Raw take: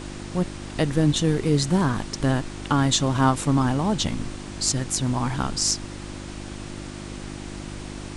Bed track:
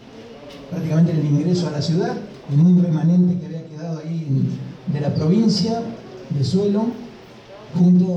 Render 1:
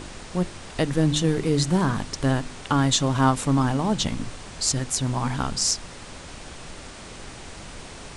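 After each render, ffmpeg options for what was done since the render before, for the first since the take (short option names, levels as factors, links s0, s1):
-af "bandreject=f=50:t=h:w=4,bandreject=f=100:t=h:w=4,bandreject=f=150:t=h:w=4,bandreject=f=200:t=h:w=4,bandreject=f=250:t=h:w=4,bandreject=f=300:t=h:w=4,bandreject=f=350:t=h:w=4"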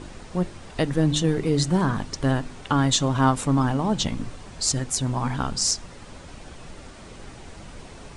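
-af "afftdn=nr=7:nf=-41"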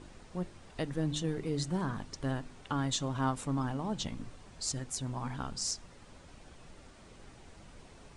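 -af "volume=0.251"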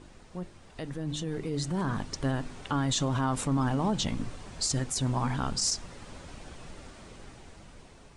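-af "alimiter=level_in=1.58:limit=0.0631:level=0:latency=1:release=17,volume=0.631,dynaudnorm=f=690:g=5:m=2.82"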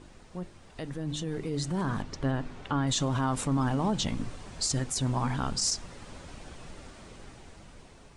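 -filter_complex "[0:a]asettb=1/sr,asplit=3[s0][s1][s2];[s0]atrim=end=2.024[s3];[s1]atrim=start=2.02:end=2.87,asetpts=PTS-STARTPTS,afade=t=in:d=0.004:c=qsin,afade=t=out:st=0.846:d=0.004:c=qsin,aemphasis=mode=reproduction:type=50fm[s4];[s2]atrim=start=2.866[s5];[s3][s4]acrossfade=d=0.004:c1=hsin:c2=qsin[s6];[s6][s5]acrossfade=d=0.004:c1=qsin:c2=hsin"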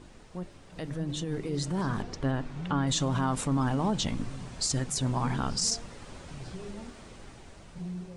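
-filter_complex "[1:a]volume=0.0596[s0];[0:a][s0]amix=inputs=2:normalize=0"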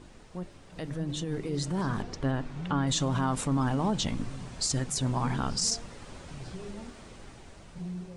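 -af anull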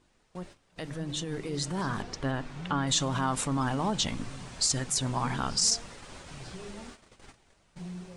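-af "agate=range=0.178:threshold=0.00562:ratio=16:detection=peak,tiltshelf=f=640:g=-3.5"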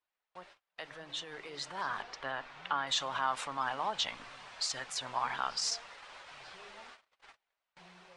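-filter_complex "[0:a]agate=range=0.126:threshold=0.00224:ratio=16:detection=peak,acrossover=split=600 4500:gain=0.0631 1 0.141[s0][s1][s2];[s0][s1][s2]amix=inputs=3:normalize=0"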